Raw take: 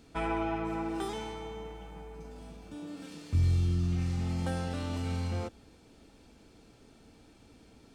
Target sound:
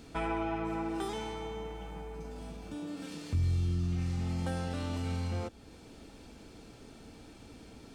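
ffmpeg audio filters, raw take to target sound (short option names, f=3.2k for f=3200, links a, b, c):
-af "acompressor=threshold=-50dB:ratio=1.5,volume=6dB"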